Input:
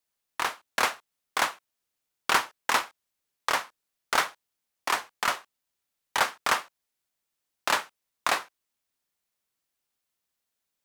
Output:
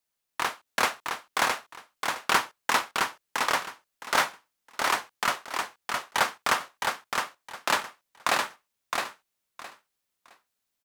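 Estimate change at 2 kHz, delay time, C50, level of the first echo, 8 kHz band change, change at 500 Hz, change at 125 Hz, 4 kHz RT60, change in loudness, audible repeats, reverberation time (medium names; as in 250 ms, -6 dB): +1.5 dB, 664 ms, no reverb, -4.0 dB, +1.5 dB, +2.0 dB, +4.5 dB, no reverb, 0.0 dB, 3, no reverb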